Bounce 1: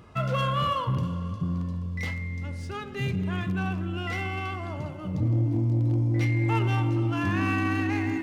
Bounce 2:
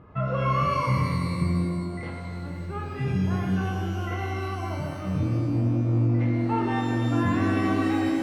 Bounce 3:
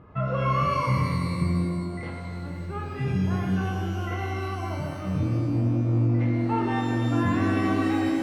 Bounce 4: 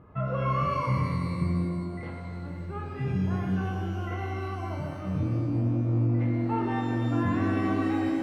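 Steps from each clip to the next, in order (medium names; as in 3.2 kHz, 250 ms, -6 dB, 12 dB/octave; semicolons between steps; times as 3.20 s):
low-pass 1.5 kHz 12 dB/octave; pitch-shifted reverb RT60 1.8 s, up +12 st, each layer -8 dB, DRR 0.5 dB
no audible change
treble shelf 3 kHz -7.5 dB; trim -2.5 dB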